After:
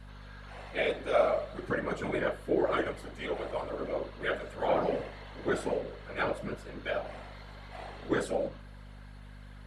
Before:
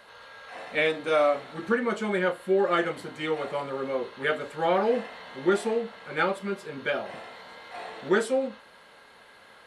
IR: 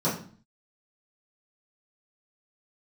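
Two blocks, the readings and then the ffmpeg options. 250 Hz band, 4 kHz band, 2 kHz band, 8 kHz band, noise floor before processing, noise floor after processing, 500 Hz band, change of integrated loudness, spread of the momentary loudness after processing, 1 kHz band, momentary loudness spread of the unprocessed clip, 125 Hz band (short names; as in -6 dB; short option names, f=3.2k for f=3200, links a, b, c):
-5.5 dB, -6.5 dB, -6.5 dB, -6.0 dB, -53 dBFS, -48 dBFS, -5.0 dB, -5.5 dB, 20 LU, -5.5 dB, 17 LU, -1.0 dB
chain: -af "bandreject=f=116.6:t=h:w=4,bandreject=f=233.2:t=h:w=4,bandreject=f=349.8:t=h:w=4,bandreject=f=466.4:t=h:w=4,bandreject=f=583:t=h:w=4,bandreject=f=699.6:t=h:w=4,bandreject=f=816.2:t=h:w=4,bandreject=f=932.8:t=h:w=4,bandreject=f=1.0494k:t=h:w=4,bandreject=f=1.166k:t=h:w=4,bandreject=f=1.2826k:t=h:w=4,bandreject=f=1.3992k:t=h:w=4,bandreject=f=1.5158k:t=h:w=4,bandreject=f=1.6324k:t=h:w=4,bandreject=f=1.749k:t=h:w=4,bandreject=f=1.8656k:t=h:w=4,bandreject=f=1.9822k:t=h:w=4,bandreject=f=2.0988k:t=h:w=4,bandreject=f=2.2154k:t=h:w=4,bandreject=f=2.332k:t=h:w=4,bandreject=f=2.4486k:t=h:w=4,bandreject=f=2.5652k:t=h:w=4,bandreject=f=2.6818k:t=h:w=4,bandreject=f=2.7984k:t=h:w=4,bandreject=f=2.915k:t=h:w=4,bandreject=f=3.0316k:t=h:w=4,bandreject=f=3.1482k:t=h:w=4,bandreject=f=3.2648k:t=h:w=4,bandreject=f=3.3814k:t=h:w=4,bandreject=f=3.498k:t=h:w=4,bandreject=f=3.6146k:t=h:w=4,bandreject=f=3.7312k:t=h:w=4,afftfilt=real='hypot(re,im)*cos(2*PI*random(0))':imag='hypot(re,im)*sin(2*PI*random(1))':win_size=512:overlap=0.75,aeval=exprs='val(0)+0.00447*(sin(2*PI*50*n/s)+sin(2*PI*2*50*n/s)/2+sin(2*PI*3*50*n/s)/3+sin(2*PI*4*50*n/s)/4+sin(2*PI*5*50*n/s)/5)':c=same,adynamicequalizer=threshold=0.00355:dfrequency=610:dqfactor=4.9:tfrequency=610:tqfactor=4.9:attack=5:release=100:ratio=0.375:range=2.5:mode=boostabove:tftype=bell"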